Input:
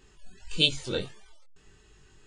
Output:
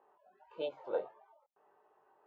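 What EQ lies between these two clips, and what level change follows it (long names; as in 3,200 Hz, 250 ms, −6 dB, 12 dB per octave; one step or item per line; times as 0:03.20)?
flat-topped band-pass 750 Hz, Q 1.7
high-frequency loss of the air 51 metres
+6.0 dB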